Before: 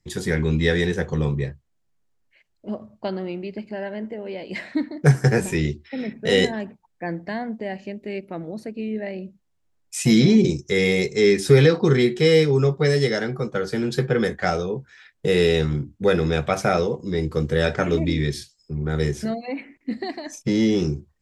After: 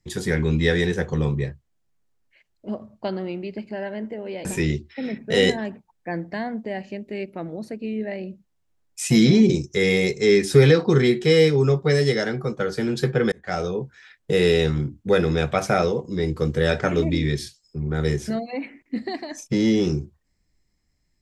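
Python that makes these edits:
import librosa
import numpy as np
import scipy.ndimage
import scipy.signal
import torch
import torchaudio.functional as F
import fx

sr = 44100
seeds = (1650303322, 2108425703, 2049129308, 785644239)

y = fx.edit(x, sr, fx.cut(start_s=4.45, length_s=0.95),
    fx.fade_in_span(start_s=14.27, length_s=0.36), tone=tone)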